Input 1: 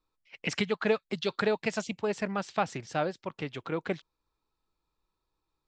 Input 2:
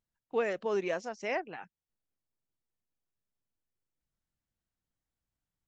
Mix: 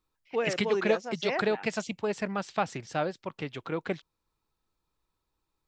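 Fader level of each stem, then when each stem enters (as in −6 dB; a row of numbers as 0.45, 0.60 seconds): 0.0, +1.0 decibels; 0.00, 0.00 seconds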